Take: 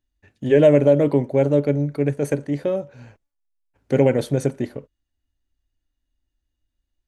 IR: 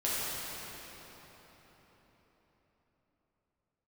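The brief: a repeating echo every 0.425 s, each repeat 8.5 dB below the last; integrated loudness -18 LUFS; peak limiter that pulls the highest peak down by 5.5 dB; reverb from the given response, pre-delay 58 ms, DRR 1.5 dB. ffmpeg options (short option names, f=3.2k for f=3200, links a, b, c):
-filter_complex "[0:a]alimiter=limit=-9.5dB:level=0:latency=1,aecho=1:1:425|850|1275|1700:0.376|0.143|0.0543|0.0206,asplit=2[a][b];[1:a]atrim=start_sample=2205,adelay=58[c];[b][c]afir=irnorm=-1:irlink=0,volume=-10.5dB[d];[a][d]amix=inputs=2:normalize=0,volume=1.5dB"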